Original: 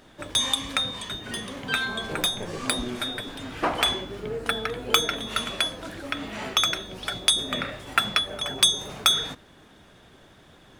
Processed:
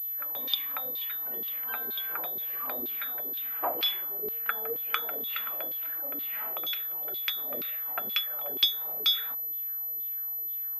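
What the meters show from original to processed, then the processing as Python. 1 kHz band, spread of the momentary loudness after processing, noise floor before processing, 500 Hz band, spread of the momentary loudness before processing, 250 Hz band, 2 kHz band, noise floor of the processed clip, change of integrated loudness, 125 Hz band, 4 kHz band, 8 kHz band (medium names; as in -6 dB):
-8.5 dB, 6 LU, -53 dBFS, -8.0 dB, 12 LU, -15.0 dB, -10.0 dB, -34 dBFS, -4.0 dB, under -20 dB, -7.5 dB, under -20 dB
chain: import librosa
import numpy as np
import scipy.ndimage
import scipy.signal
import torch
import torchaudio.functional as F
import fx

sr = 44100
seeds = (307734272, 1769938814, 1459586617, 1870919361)

y = fx.filter_lfo_bandpass(x, sr, shape='saw_down', hz=2.1, low_hz=350.0, high_hz=4600.0, q=2.5)
y = fx.pwm(y, sr, carrier_hz=12000.0)
y = y * 10.0 ** (-1.5 / 20.0)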